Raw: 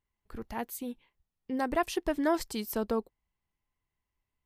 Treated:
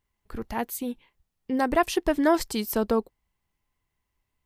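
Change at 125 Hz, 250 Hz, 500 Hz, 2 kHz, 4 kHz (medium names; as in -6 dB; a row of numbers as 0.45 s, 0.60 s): +6.5 dB, +6.5 dB, +6.5 dB, +6.5 dB, +6.5 dB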